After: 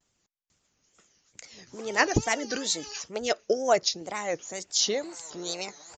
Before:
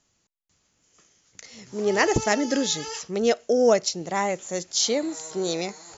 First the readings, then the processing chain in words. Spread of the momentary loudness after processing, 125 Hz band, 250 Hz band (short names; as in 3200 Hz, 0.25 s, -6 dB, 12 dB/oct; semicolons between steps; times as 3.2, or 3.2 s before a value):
14 LU, -2.5 dB, -8.0 dB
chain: wow and flutter 130 cents; harmonic-percussive split harmonic -12 dB; downsampling 16000 Hz